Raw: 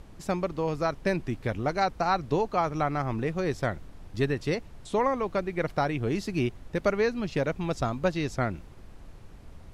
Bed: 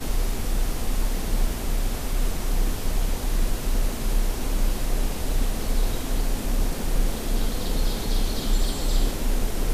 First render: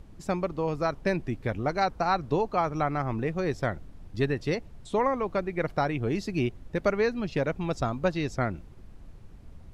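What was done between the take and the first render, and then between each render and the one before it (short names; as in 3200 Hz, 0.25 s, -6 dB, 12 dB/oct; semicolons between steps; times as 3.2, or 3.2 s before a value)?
denoiser 6 dB, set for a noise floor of -48 dBFS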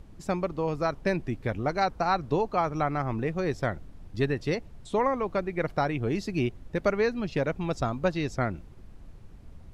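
nothing audible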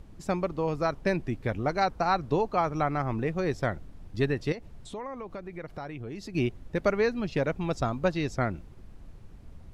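4.52–6.35 compressor 3:1, threshold -38 dBFS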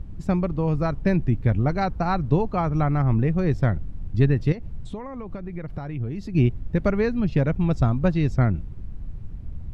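tone controls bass +14 dB, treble -6 dB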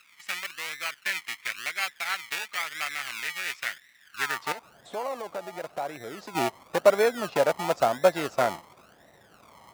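in parallel at -5 dB: decimation with a swept rate 33×, swing 60% 0.96 Hz; on the sum: high-pass sweep 2100 Hz -> 650 Hz, 4.02–4.76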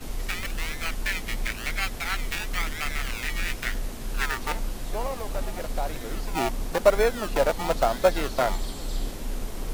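add bed -7.5 dB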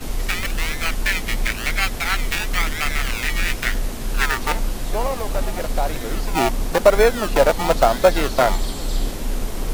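gain +7.5 dB; limiter -1 dBFS, peak gain reduction 3 dB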